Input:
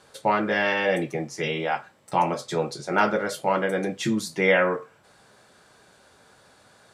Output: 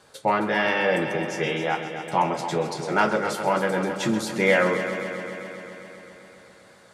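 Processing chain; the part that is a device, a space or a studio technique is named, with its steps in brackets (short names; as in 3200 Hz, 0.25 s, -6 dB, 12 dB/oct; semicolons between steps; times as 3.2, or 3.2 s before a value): multi-head tape echo (multi-head echo 0.132 s, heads first and second, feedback 71%, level -13 dB; wow and flutter 24 cents)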